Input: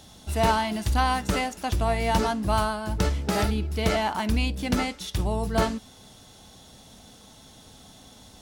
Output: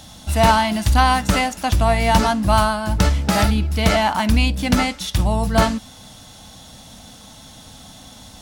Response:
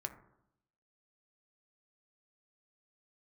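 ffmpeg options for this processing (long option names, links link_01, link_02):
-af "equalizer=frequency=400:width=4:gain=-12.5,volume=8.5dB"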